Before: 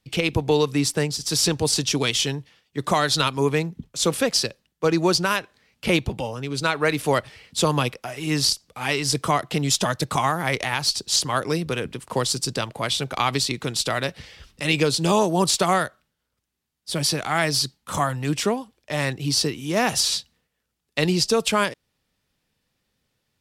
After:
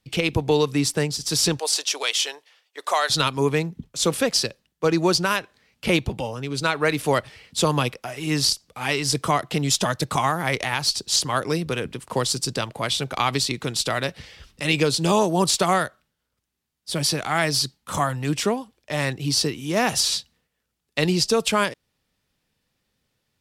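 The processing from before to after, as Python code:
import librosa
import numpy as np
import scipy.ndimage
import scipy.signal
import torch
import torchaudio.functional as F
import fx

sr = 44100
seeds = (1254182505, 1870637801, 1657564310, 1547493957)

y = fx.highpass(x, sr, hz=520.0, slope=24, at=(1.59, 3.1))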